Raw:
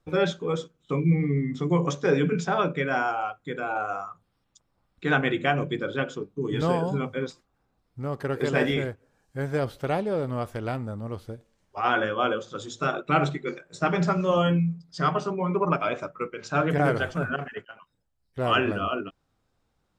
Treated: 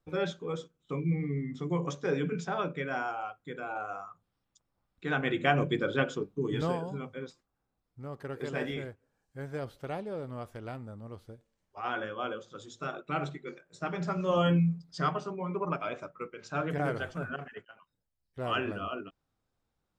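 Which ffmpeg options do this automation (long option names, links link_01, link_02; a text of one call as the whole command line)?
ffmpeg -i in.wav -af "volume=9.5dB,afade=type=in:start_time=5.15:duration=0.47:silence=0.421697,afade=type=out:start_time=6.25:duration=0.59:silence=0.316228,afade=type=in:start_time=14.02:duration=0.72:silence=0.316228,afade=type=out:start_time=14.74:duration=0.45:silence=0.398107" out.wav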